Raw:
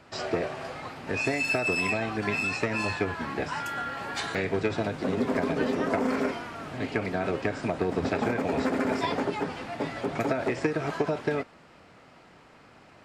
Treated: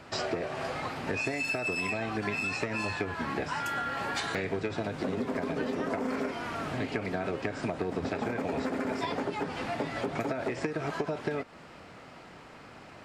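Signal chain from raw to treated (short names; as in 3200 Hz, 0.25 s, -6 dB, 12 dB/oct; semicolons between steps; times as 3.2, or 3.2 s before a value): compressor 5:1, threshold -34 dBFS, peak gain reduction 12.5 dB; gain +4.5 dB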